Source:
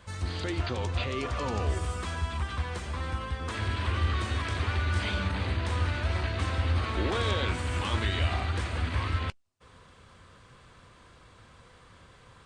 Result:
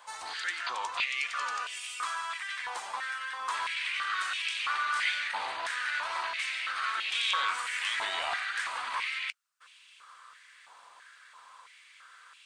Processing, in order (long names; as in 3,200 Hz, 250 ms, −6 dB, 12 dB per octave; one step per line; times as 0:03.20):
high-shelf EQ 4,800 Hz +8.5 dB
high-pass on a step sequencer 3 Hz 860–2,600 Hz
level −3 dB